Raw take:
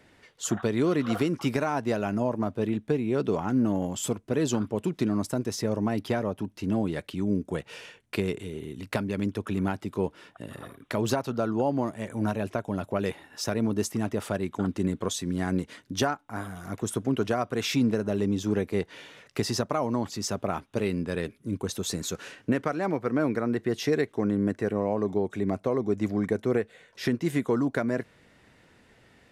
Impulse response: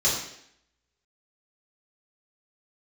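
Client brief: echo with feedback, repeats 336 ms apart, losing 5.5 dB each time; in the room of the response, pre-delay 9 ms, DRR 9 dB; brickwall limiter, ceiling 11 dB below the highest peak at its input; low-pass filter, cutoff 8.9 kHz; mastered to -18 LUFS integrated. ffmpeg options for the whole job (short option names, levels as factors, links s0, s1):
-filter_complex "[0:a]lowpass=8900,alimiter=limit=0.0891:level=0:latency=1,aecho=1:1:336|672|1008|1344|1680|2016|2352:0.531|0.281|0.149|0.079|0.0419|0.0222|0.0118,asplit=2[s0][s1];[1:a]atrim=start_sample=2205,adelay=9[s2];[s1][s2]afir=irnorm=-1:irlink=0,volume=0.0794[s3];[s0][s3]amix=inputs=2:normalize=0,volume=4.22"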